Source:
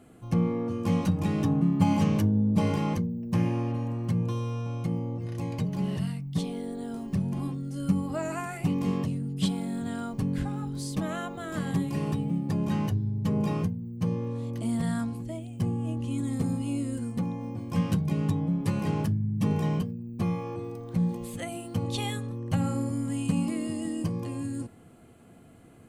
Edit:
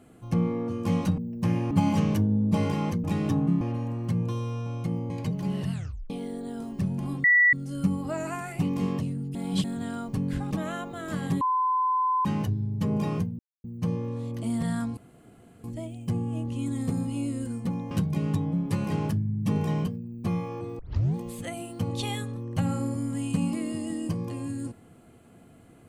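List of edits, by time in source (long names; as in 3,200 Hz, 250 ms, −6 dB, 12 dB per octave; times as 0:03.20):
0:01.18–0:01.75: swap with 0:03.08–0:03.61
0:05.10–0:05.44: remove
0:06.06: tape stop 0.38 s
0:07.58: insert tone 1,950 Hz −15.5 dBFS 0.29 s
0:09.40–0:09.69: reverse
0:10.56–0:10.95: remove
0:11.85–0:12.69: beep over 1,020 Hz −21.5 dBFS
0:13.83: splice in silence 0.25 s
0:15.16: splice in room tone 0.67 s
0:17.43–0:17.86: remove
0:20.74: tape start 0.36 s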